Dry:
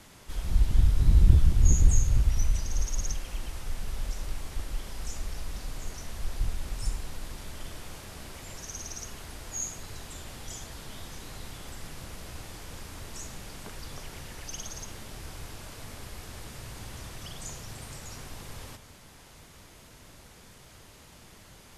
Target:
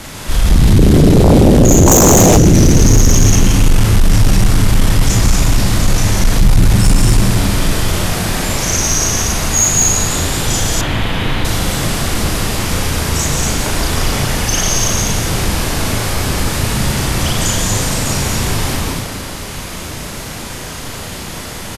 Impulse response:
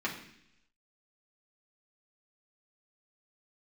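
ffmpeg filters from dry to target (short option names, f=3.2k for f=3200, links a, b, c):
-filter_complex "[0:a]asplit=2[a][b];[b]adelay=37,volume=-2dB[c];[a][c]amix=inputs=2:normalize=0,asplit=2[d][e];[e]aecho=0:1:145.8|236.2:0.501|0.708[f];[d][f]amix=inputs=2:normalize=0,asoftclip=type=tanh:threshold=-11dB,asplit=2[g][h];[h]asplit=5[i][j][k][l][m];[i]adelay=166,afreqshift=83,volume=-8dB[n];[j]adelay=332,afreqshift=166,volume=-14.9dB[o];[k]adelay=498,afreqshift=249,volume=-21.9dB[p];[l]adelay=664,afreqshift=332,volume=-28.8dB[q];[m]adelay=830,afreqshift=415,volume=-35.7dB[r];[n][o][p][q][r]amix=inputs=5:normalize=0[s];[g][s]amix=inputs=2:normalize=0,asplit=3[t][u][v];[t]afade=t=out:st=1.86:d=0.02[w];[u]acontrast=48,afade=t=in:st=1.86:d=0.02,afade=t=out:st=2.36:d=0.02[x];[v]afade=t=in:st=2.36:d=0.02[y];[w][x][y]amix=inputs=3:normalize=0,asettb=1/sr,asplit=3[z][aa][ab];[z]atrim=end=10.814[ac];[aa]atrim=start=10.81:end=11.45,asetpts=PTS-STARTPTS,afade=t=in:d=0.004:c=qsin,afade=t=out:st=0.636:d=0.004:c=qsin,highshelf=f=4.3k:t=q:w=1.5:g=-12.5[ad];[ab]atrim=start=11.446[ae];[ac][ad]acrossfade=d=0.004:c1=hsin:c2=qsin[af];[af][ae]acrossfade=d=0.004:c1=qsin:c2=hsin,aeval=exprs='0.668*sin(PI/2*7.08*val(0)/0.668)':c=same"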